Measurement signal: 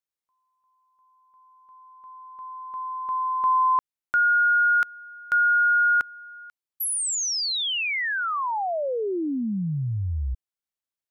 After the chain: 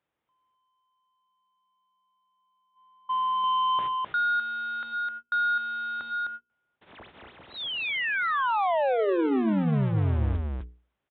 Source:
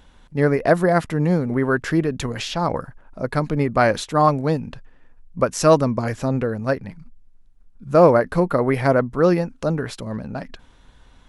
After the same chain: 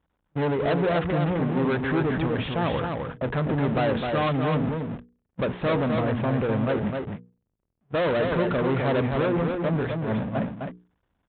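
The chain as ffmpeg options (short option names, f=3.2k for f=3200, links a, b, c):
-af "aeval=exprs='val(0)+0.5*0.0794*sgn(val(0))':c=same,agate=range=-42dB:threshold=-22dB:ratio=16:release=252:detection=rms,lowpass=f=1k:p=1,bandreject=f=60:t=h:w=6,bandreject=f=120:t=h:w=6,bandreject=f=180:t=h:w=6,bandreject=f=240:t=h:w=6,bandreject=f=300:t=h:w=6,bandreject=f=360:t=h:w=6,bandreject=f=420:t=h:w=6,bandreject=f=480:t=h:w=6,aresample=8000,asoftclip=type=tanh:threshold=-21.5dB,aresample=44100,highpass=52,aecho=1:1:257:0.596"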